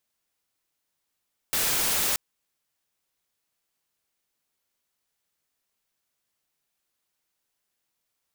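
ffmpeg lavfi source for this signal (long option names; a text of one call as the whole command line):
ffmpeg -f lavfi -i "anoisesrc=color=white:amplitude=0.0974:duration=0.63:sample_rate=44100:seed=1" out.wav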